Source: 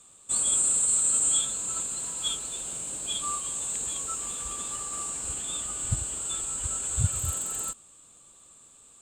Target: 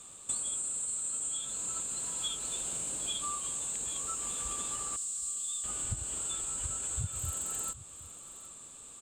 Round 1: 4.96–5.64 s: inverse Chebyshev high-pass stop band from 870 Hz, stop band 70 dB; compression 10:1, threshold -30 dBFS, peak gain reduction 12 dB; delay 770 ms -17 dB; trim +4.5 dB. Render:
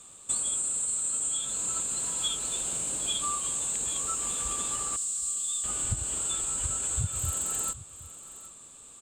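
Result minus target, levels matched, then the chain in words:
compression: peak gain reduction -5.5 dB
4.96–5.64 s: inverse Chebyshev high-pass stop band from 870 Hz, stop band 70 dB; compression 10:1, threshold -36 dBFS, peak gain reduction 17.5 dB; delay 770 ms -17 dB; trim +4.5 dB

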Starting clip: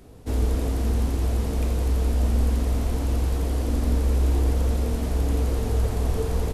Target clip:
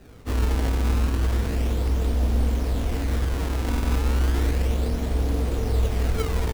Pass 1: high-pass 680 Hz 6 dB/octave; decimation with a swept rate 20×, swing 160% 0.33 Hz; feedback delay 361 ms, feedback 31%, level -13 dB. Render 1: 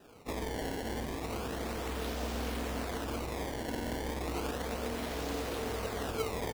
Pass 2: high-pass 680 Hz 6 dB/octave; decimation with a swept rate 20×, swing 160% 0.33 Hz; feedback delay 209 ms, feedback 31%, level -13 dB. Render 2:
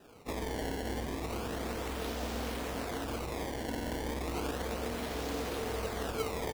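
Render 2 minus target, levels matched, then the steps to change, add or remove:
500 Hz band +7.5 dB
remove: high-pass 680 Hz 6 dB/octave

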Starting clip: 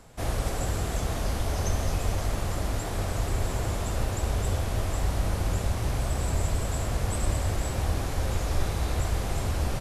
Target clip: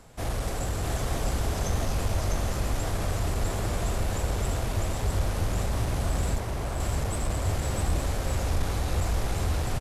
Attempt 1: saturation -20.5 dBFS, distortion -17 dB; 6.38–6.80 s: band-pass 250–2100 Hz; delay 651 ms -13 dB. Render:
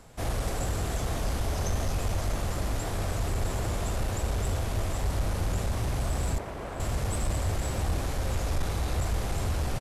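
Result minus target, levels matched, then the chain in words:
echo-to-direct -10.5 dB
saturation -20.5 dBFS, distortion -17 dB; 6.38–6.80 s: band-pass 250–2100 Hz; delay 651 ms -2.5 dB

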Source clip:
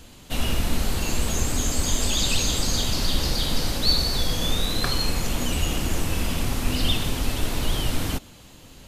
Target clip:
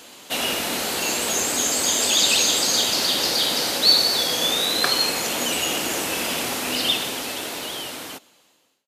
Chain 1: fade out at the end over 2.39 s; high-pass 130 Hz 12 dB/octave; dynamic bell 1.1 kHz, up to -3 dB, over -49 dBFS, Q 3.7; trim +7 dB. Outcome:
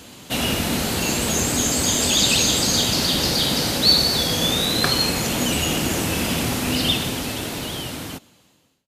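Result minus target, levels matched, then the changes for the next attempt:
125 Hz band +15.0 dB
change: high-pass 400 Hz 12 dB/octave

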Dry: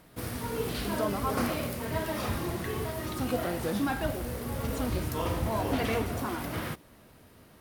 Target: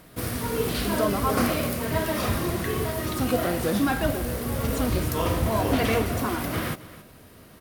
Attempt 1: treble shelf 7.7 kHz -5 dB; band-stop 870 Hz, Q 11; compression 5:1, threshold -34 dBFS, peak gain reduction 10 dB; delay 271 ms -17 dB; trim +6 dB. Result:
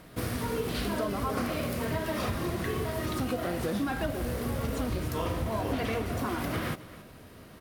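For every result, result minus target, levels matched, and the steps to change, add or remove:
compression: peak gain reduction +10 dB; 8 kHz band -3.0 dB
remove: compression 5:1, threshold -34 dBFS, peak gain reduction 10 dB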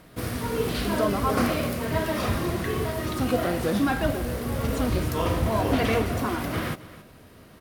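8 kHz band -4.0 dB
change: treble shelf 7.7 kHz +2.5 dB

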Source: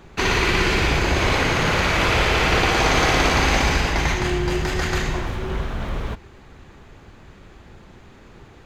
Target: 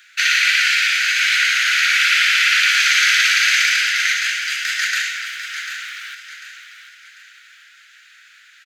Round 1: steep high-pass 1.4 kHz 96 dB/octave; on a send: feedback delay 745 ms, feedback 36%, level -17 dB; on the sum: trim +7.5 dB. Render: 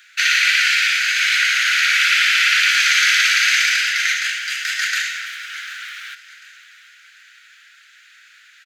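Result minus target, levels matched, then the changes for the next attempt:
echo-to-direct -7 dB
change: feedback delay 745 ms, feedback 36%, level -10 dB

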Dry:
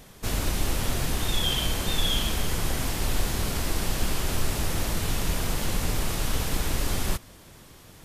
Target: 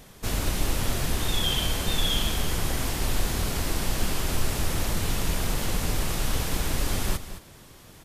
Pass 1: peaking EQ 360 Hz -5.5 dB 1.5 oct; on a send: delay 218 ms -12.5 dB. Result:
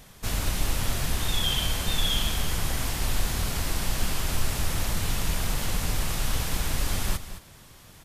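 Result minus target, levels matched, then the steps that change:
500 Hz band -3.5 dB
remove: peaking EQ 360 Hz -5.5 dB 1.5 oct

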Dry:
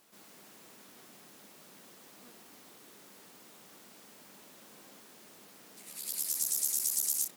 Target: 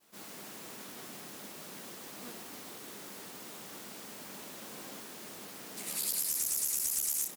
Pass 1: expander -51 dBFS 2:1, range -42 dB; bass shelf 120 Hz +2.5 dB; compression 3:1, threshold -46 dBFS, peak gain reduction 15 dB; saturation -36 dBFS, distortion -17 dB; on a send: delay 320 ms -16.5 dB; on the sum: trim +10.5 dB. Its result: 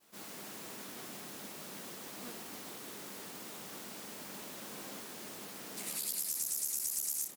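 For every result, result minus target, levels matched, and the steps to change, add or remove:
echo 228 ms early; compression: peak gain reduction +5.5 dB
change: delay 548 ms -16.5 dB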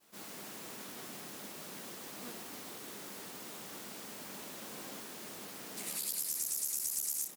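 compression: peak gain reduction +5.5 dB
change: compression 3:1, threshold -37.5 dBFS, peak gain reduction 9 dB

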